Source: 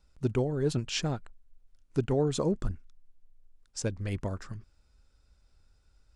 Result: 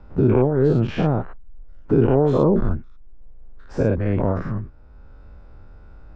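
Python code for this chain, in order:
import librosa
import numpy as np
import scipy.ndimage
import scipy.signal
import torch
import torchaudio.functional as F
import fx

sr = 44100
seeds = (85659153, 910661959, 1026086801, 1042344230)

y = fx.spec_dilate(x, sr, span_ms=120)
y = scipy.signal.sosfilt(scipy.signal.butter(2, 1200.0, 'lowpass', fs=sr, output='sos'), y)
y = fx.band_squash(y, sr, depth_pct=40)
y = y * 10.0 ** (8.0 / 20.0)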